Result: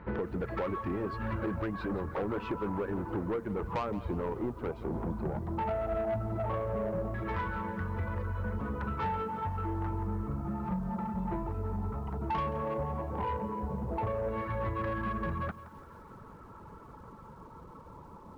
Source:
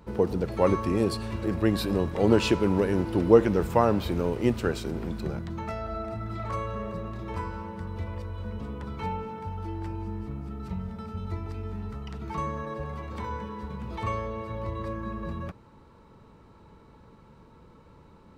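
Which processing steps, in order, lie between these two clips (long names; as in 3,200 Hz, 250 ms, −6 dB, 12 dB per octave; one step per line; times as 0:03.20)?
hum removal 226.5 Hz, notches 5
reverb reduction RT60 0.59 s
0:10.44–0:11.49: comb filter 5.7 ms, depth 97%
downward compressor 20 to 1, threshold −30 dBFS, peak gain reduction 19 dB
auto-filter low-pass saw down 0.14 Hz 700–1,800 Hz
soft clipping −30.5 dBFS, distortion −13 dB
feedback echo at a low word length 171 ms, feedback 55%, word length 10 bits, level −15 dB
level +3.5 dB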